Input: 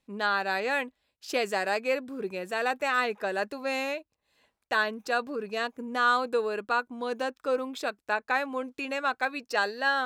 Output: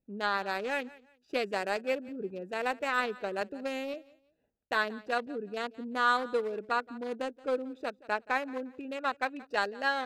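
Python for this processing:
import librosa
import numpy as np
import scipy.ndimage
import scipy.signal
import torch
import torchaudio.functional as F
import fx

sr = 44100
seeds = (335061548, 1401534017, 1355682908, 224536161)

y = fx.wiener(x, sr, points=41)
y = fx.echo_feedback(y, sr, ms=175, feedback_pct=27, wet_db=-21.0)
y = fx.band_squash(y, sr, depth_pct=70, at=(3.41, 3.94))
y = F.gain(torch.from_numpy(y), -1.5).numpy()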